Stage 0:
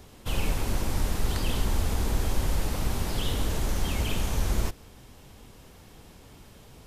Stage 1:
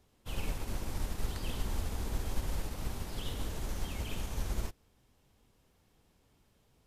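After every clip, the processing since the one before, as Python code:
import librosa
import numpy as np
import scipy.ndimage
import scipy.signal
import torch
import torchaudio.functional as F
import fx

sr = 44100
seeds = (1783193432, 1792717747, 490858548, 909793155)

y = fx.upward_expand(x, sr, threshold_db=-43.0, expansion=1.5)
y = y * librosa.db_to_amplitude(-6.5)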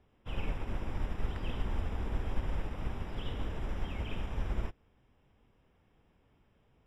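y = scipy.signal.savgol_filter(x, 25, 4, mode='constant')
y = y * librosa.db_to_amplitude(1.0)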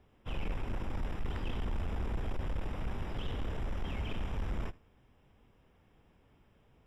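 y = 10.0 ** (-32.0 / 20.0) * np.tanh(x / 10.0 ** (-32.0 / 20.0))
y = y + 10.0 ** (-22.0 / 20.0) * np.pad(y, (int(79 * sr / 1000.0), 0))[:len(y)]
y = y * librosa.db_to_amplitude(3.0)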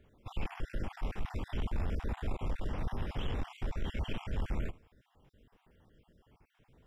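y = fx.spec_dropout(x, sr, seeds[0], share_pct=37)
y = y * librosa.db_to_amplitude(2.0)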